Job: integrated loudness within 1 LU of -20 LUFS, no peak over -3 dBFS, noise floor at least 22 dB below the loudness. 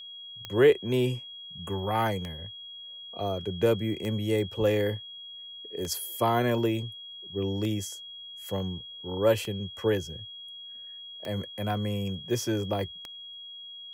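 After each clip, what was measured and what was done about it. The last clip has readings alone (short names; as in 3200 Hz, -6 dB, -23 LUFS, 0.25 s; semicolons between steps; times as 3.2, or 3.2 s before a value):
clicks 8; steady tone 3300 Hz; tone level -41 dBFS; loudness -29.5 LUFS; peak -10.0 dBFS; loudness target -20.0 LUFS
-> de-click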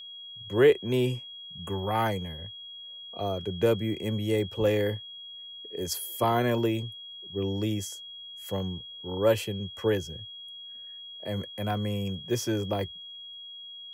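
clicks 0; steady tone 3300 Hz; tone level -41 dBFS
-> notch 3300 Hz, Q 30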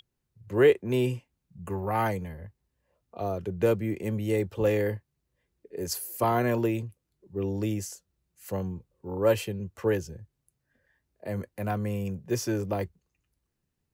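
steady tone none; loudness -29.0 LUFS; peak -10.0 dBFS; loudness target -20.0 LUFS
-> gain +9 dB; limiter -3 dBFS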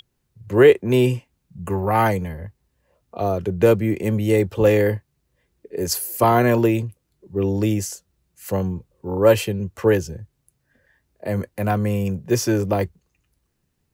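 loudness -20.5 LUFS; peak -3.0 dBFS; noise floor -72 dBFS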